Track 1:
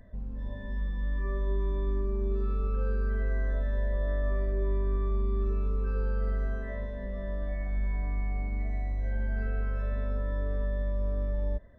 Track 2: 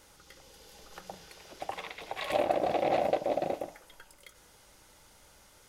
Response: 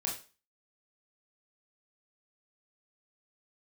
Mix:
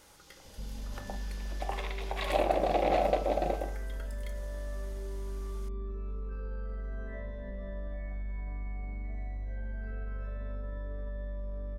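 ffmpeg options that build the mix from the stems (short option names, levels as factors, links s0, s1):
-filter_complex "[0:a]alimiter=level_in=1.19:limit=0.0631:level=0:latency=1:release=26,volume=0.841,acompressor=threshold=0.0178:ratio=2,adelay=450,volume=0.794[s0];[1:a]volume=0.75,asplit=2[s1][s2];[s2]volume=0.422[s3];[2:a]atrim=start_sample=2205[s4];[s3][s4]afir=irnorm=-1:irlink=0[s5];[s0][s1][s5]amix=inputs=3:normalize=0"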